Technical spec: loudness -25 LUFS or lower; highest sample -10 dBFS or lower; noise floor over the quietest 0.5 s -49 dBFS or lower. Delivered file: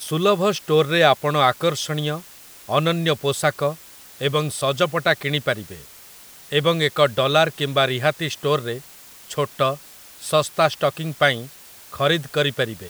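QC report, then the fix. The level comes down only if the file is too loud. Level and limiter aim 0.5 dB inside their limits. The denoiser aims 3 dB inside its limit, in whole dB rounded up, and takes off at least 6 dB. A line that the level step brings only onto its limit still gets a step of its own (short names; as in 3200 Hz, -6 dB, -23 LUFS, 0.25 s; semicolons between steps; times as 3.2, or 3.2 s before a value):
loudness -20.5 LUFS: fail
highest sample -2.0 dBFS: fail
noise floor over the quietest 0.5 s -44 dBFS: fail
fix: denoiser 6 dB, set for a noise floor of -44 dBFS; gain -5 dB; limiter -10.5 dBFS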